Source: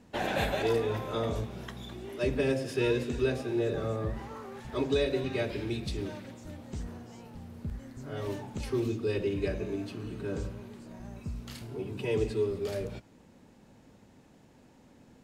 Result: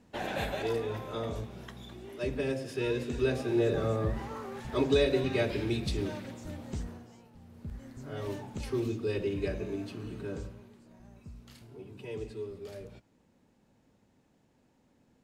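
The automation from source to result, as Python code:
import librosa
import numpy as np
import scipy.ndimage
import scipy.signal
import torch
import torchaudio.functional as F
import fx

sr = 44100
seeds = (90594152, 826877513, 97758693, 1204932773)

y = fx.gain(x, sr, db=fx.line((2.85, -4.0), (3.54, 2.5), (6.72, 2.5), (7.31, -10.0), (7.86, -1.5), (10.18, -1.5), (10.78, -10.0)))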